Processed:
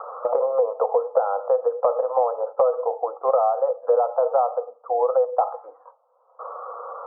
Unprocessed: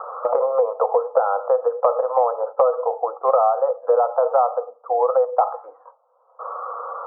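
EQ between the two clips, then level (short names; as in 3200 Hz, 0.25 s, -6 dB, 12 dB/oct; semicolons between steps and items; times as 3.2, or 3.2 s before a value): dynamic EQ 1300 Hz, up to -4 dB, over -33 dBFS, Q 1.3; air absorption 430 m; 0.0 dB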